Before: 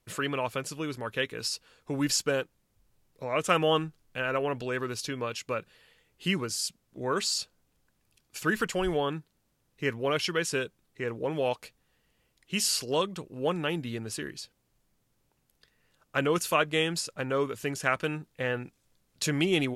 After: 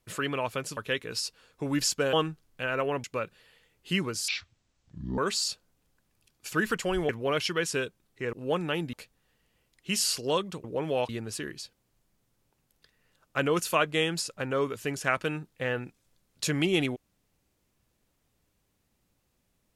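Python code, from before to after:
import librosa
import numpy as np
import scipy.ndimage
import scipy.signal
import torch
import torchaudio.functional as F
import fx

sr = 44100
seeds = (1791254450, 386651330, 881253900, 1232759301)

y = fx.edit(x, sr, fx.cut(start_s=0.77, length_s=0.28),
    fx.cut(start_s=2.41, length_s=1.28),
    fx.cut(start_s=4.6, length_s=0.79),
    fx.speed_span(start_s=6.63, length_s=0.45, speed=0.5),
    fx.cut(start_s=8.99, length_s=0.89),
    fx.swap(start_s=11.12, length_s=0.45, other_s=13.28, other_length_s=0.6), tone=tone)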